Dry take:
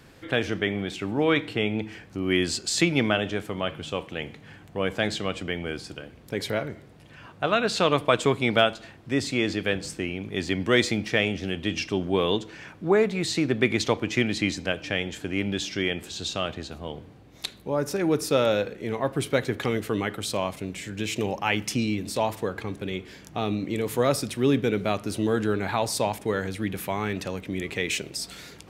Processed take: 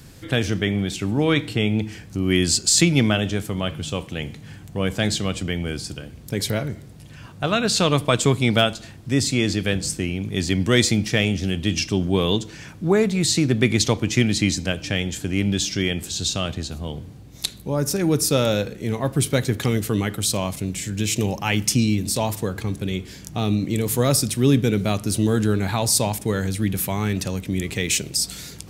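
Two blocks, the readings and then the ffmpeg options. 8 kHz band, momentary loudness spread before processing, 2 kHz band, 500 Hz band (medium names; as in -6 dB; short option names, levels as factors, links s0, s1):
+12.0 dB, 11 LU, +1.0 dB, +1.0 dB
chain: -af "bass=f=250:g=11,treble=f=4000:g=13"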